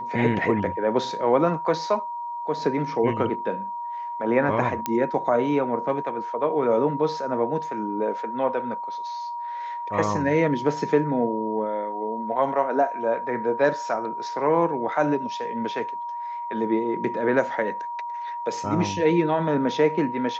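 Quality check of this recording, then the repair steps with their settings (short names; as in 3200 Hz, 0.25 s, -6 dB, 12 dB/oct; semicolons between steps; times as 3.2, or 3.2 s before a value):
tone 950 Hz -29 dBFS
4.86 pop -10 dBFS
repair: de-click; notch 950 Hz, Q 30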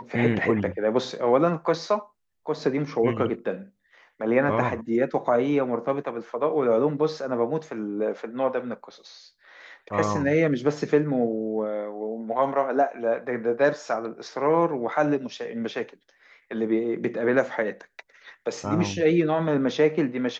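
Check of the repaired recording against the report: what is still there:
none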